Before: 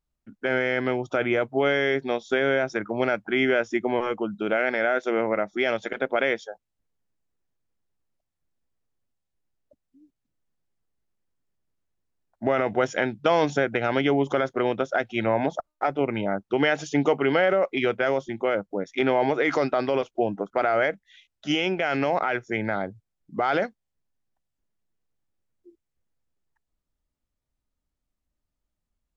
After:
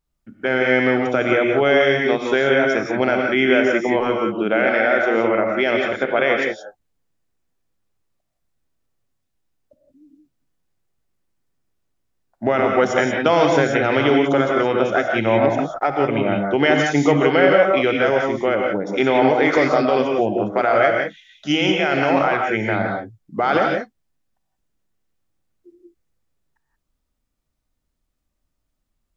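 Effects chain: 4.28–6.42 s: low-pass 5.5 kHz 12 dB/octave; gated-style reverb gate 200 ms rising, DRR 1 dB; trim +4.5 dB

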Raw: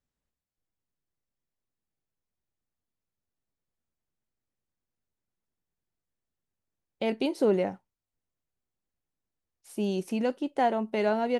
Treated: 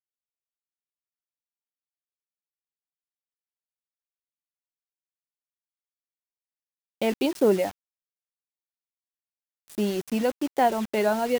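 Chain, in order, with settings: reverb removal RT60 0.81 s; bit crusher 7-bit; trim +4 dB

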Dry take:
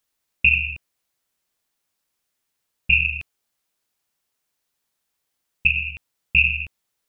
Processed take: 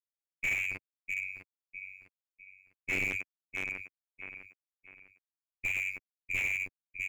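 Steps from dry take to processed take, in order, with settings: 0.71–3.15 s: cycle switcher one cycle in 3, inverted; peaking EQ 540 Hz +12 dB 1.2 oct; peak limiter -9.5 dBFS, peak gain reduction 6.5 dB; mistuned SSB -210 Hz 160–2600 Hz; crossover distortion -55 dBFS; robot voice 94.9 Hz; on a send: feedback delay 652 ms, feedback 32%, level -10.5 dB; on the sum: slew-rate limiter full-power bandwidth 83 Hz; trim +1 dB

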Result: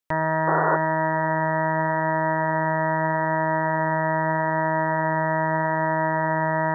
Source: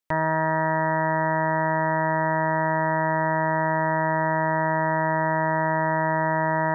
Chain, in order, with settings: tape echo 106 ms, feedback 76%, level -17 dB, low-pass 1.8 kHz; painted sound noise, 0.47–0.77 s, 290–1500 Hz -23 dBFS

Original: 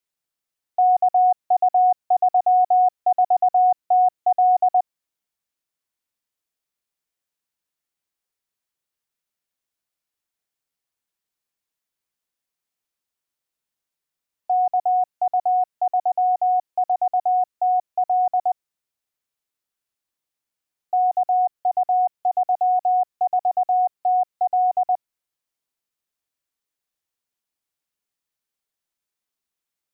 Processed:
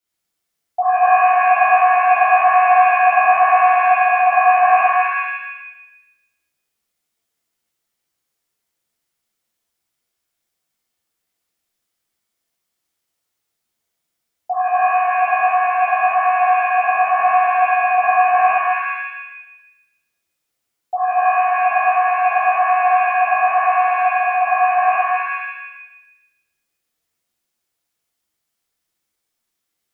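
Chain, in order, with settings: 17.18–18.48 s: bass shelf 420 Hz +7 dB; pitch-shifted reverb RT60 1 s, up +7 st, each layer -2 dB, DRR -7 dB; trim -1 dB

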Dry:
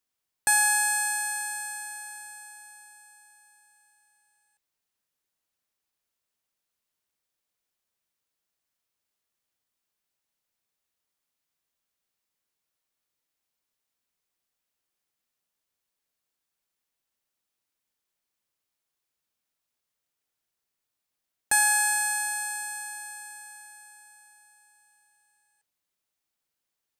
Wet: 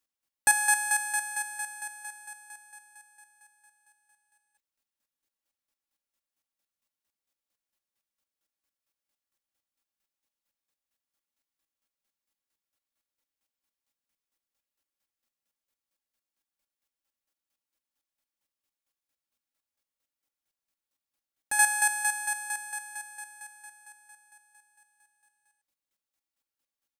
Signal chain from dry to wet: square tremolo 4.4 Hz, depth 65%, duty 25%; comb 3.6 ms, depth 45%

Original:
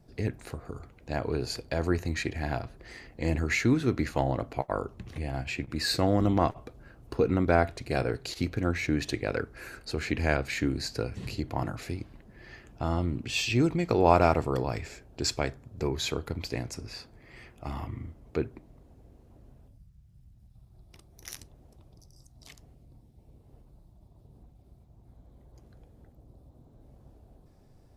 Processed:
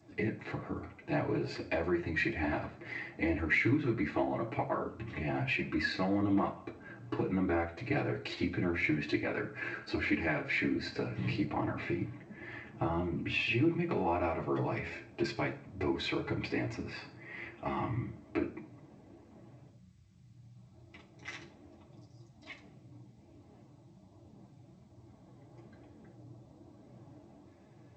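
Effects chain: high-pass 78 Hz 24 dB/octave; 11.48–13.91 s: tone controls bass +2 dB, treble -7 dB; compression 5:1, threshold -32 dBFS, peak gain reduction 16 dB; flange 1.2 Hz, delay 2.7 ms, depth 4.7 ms, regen -19%; distance through air 340 m; reverberation RT60 0.40 s, pre-delay 3 ms, DRR -2.5 dB; trim +7.5 dB; G.722 64 kbps 16 kHz

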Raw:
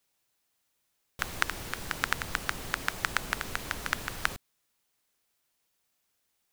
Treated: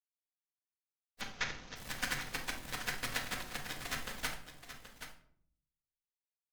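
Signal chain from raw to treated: frequency axis rescaled in octaves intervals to 108%; Chebyshev shaper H 7 -17 dB, 8 -17 dB, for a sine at -19.5 dBFS; 1.21–1.76 s: elliptic low-pass 6.5 kHz, stop band 40 dB; on a send: delay 777 ms -10.5 dB; on the sum: simulated room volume 880 m³, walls furnished, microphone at 1.9 m; trim -1 dB

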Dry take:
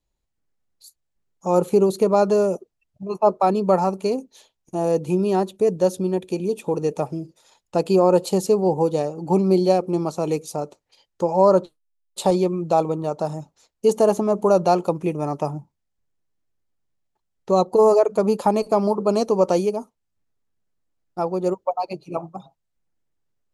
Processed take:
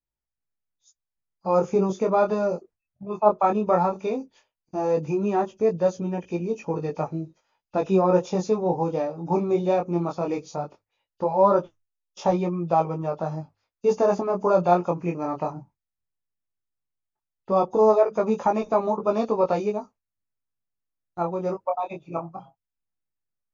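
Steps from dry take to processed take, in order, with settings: knee-point frequency compression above 2.5 kHz 1.5:1; gate -47 dBFS, range -11 dB; fifteen-band graphic EQ 100 Hz +4 dB, 400 Hz -3 dB, 2.5 kHz +12 dB, 6.3 kHz +9 dB; chorus 0.16 Hz, delay 17.5 ms, depth 6.4 ms; resonant high shelf 2.1 kHz -10.5 dB, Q 1.5; hum notches 50/100 Hz

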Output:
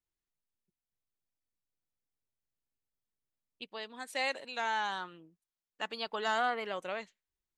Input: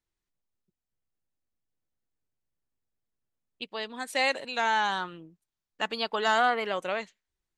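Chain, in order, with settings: 3.78–6.07 s: bass shelf 140 Hz -8.5 dB; trim -7 dB

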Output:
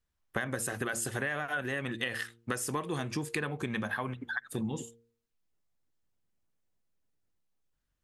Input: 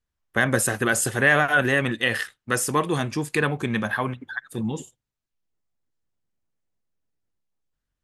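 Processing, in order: de-hum 116 Hz, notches 4; compression 12:1, threshold -30 dBFS, peak gain reduction 17 dB

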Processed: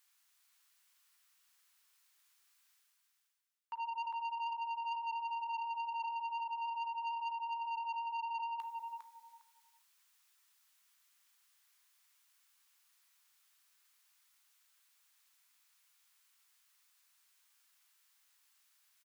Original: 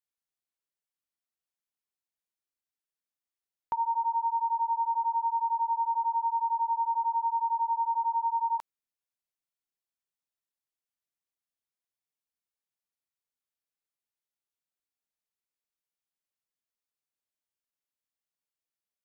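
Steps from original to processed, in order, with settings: high-pass 1 kHz 24 dB/octave; gate -33 dBFS, range -9 dB; reverse; upward compressor, threshold -51 dBFS; reverse; peak limiter -33 dBFS, peak gain reduction 6 dB; flange 0.4 Hz, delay 9.1 ms, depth 8.9 ms, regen +70%; on a send: feedback delay 405 ms, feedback 18%, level -5 dB; on the sum: transformer saturation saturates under 1.6 kHz; trim +5 dB

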